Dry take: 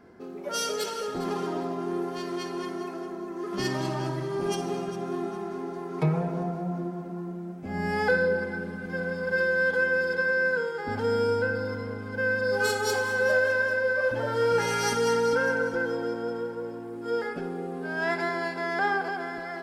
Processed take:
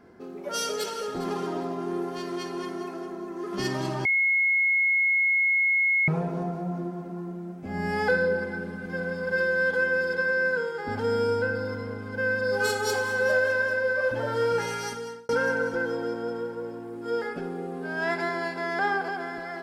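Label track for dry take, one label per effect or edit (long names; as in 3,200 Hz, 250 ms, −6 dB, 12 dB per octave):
4.050000	6.080000	beep over 2,170 Hz −19.5 dBFS
14.370000	15.290000	fade out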